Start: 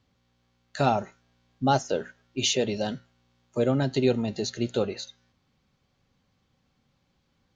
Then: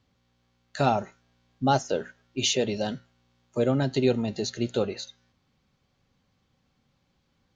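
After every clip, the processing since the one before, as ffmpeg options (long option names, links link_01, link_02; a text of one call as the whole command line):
ffmpeg -i in.wav -af anull out.wav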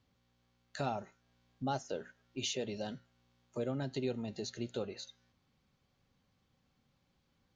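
ffmpeg -i in.wav -af "acompressor=threshold=-42dB:ratio=1.5,volume=-5dB" out.wav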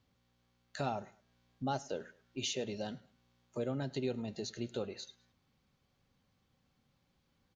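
ffmpeg -i in.wav -af "aecho=1:1:106|212:0.0708|0.0255" out.wav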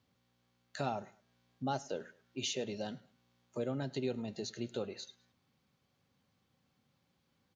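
ffmpeg -i in.wav -af "highpass=92" out.wav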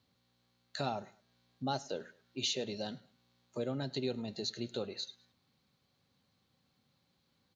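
ffmpeg -i in.wav -af "equalizer=frequency=4100:width_type=o:width=0.32:gain=9" out.wav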